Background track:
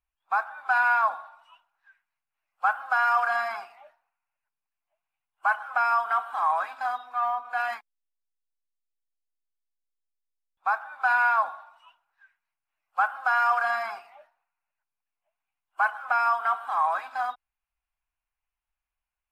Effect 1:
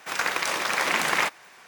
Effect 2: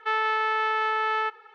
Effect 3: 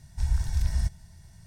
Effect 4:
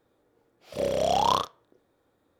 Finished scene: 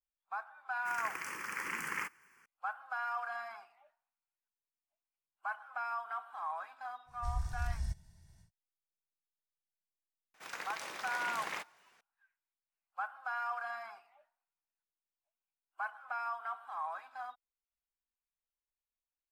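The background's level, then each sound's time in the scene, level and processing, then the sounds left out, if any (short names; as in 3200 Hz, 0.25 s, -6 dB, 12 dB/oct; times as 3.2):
background track -15 dB
0.79 add 1 -12.5 dB + fixed phaser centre 1600 Hz, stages 4
7.05 add 3 -11 dB, fades 0.10 s
10.34 add 1 -17.5 dB
not used: 2, 4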